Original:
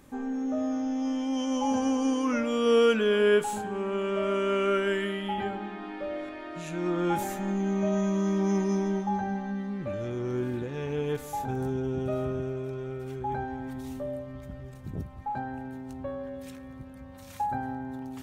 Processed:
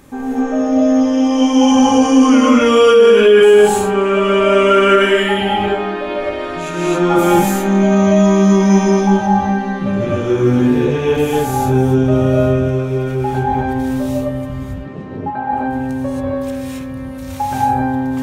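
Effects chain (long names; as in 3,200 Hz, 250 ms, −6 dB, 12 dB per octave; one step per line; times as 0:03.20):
0:14.58–0:15.53: band-pass filter 210–2,700 Hz
reverb whose tail is shaped and stops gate 300 ms rising, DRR −6.5 dB
boost into a limiter +11 dB
level −1 dB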